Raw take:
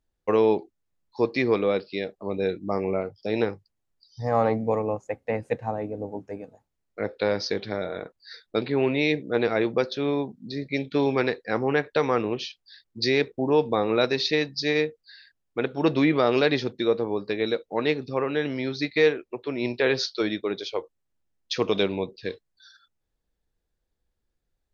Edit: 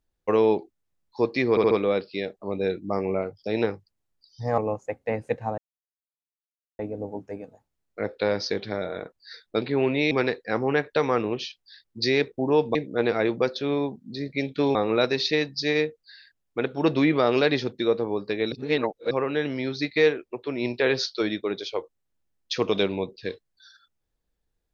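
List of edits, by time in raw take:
1.50 s: stutter 0.07 s, 4 plays
4.37–4.79 s: delete
5.79 s: insert silence 1.21 s
9.11–11.11 s: move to 13.75 s
17.52–18.11 s: reverse

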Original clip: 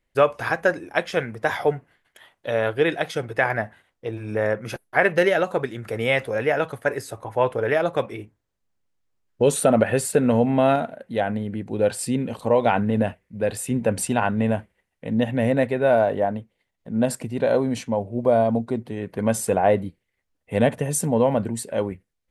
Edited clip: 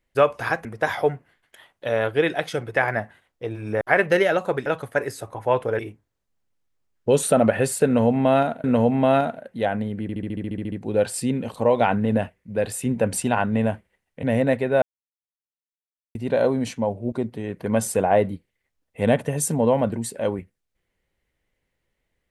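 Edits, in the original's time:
0.65–1.27 s: delete
4.43–4.87 s: delete
5.72–6.56 s: delete
7.69–8.12 s: delete
10.19–10.97 s: loop, 2 plays
11.57 s: stutter 0.07 s, 11 plays
15.08–15.33 s: delete
15.92–17.25 s: mute
18.22–18.65 s: delete

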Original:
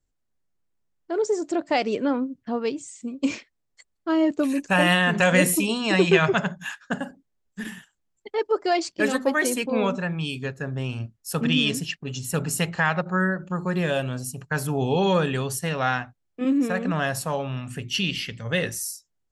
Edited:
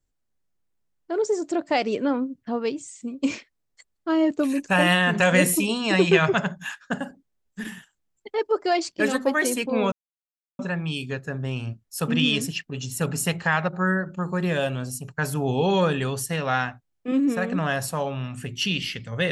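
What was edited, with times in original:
9.92 s: insert silence 0.67 s

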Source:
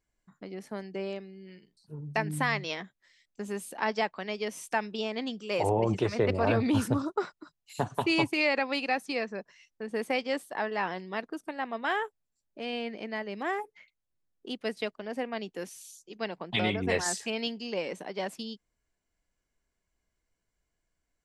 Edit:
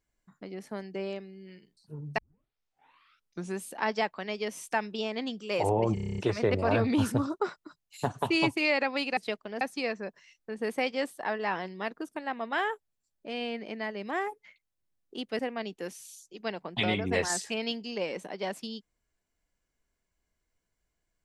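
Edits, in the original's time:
2.18 s: tape start 1.43 s
5.94 s: stutter 0.03 s, 9 plays
14.71–15.15 s: move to 8.93 s

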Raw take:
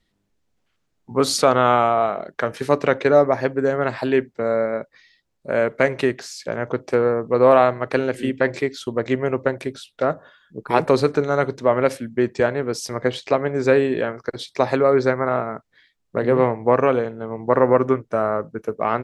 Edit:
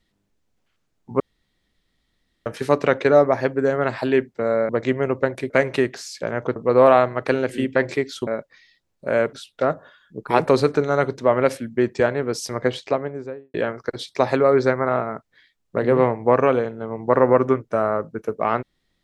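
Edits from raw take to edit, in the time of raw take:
1.20–2.46 s: room tone
4.69–5.75 s: swap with 8.92–9.73 s
6.81–7.21 s: delete
13.04–13.94 s: studio fade out

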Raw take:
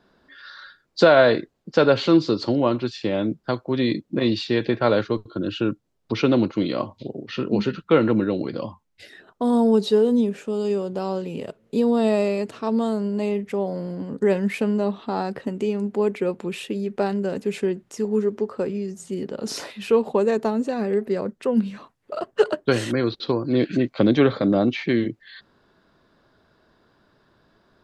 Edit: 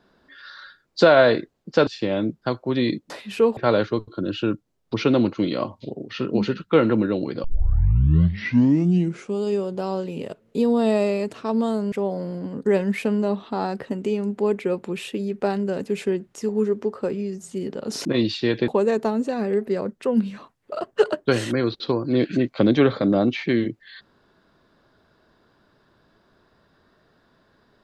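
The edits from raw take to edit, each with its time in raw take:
1.87–2.89 s: delete
4.12–4.75 s: swap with 19.61–20.08 s
8.62 s: tape start 1.99 s
13.10–13.48 s: delete

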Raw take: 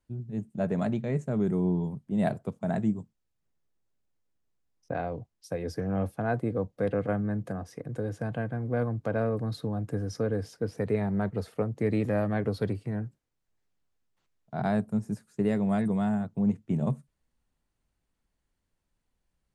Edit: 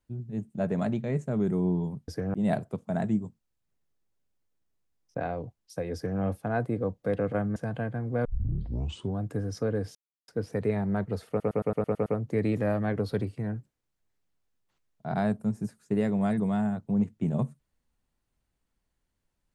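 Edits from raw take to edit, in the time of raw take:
5.68–5.94 s: copy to 2.08 s
7.30–8.14 s: delete
8.83 s: tape start 0.95 s
10.53 s: insert silence 0.33 s
11.54 s: stutter 0.11 s, 8 plays

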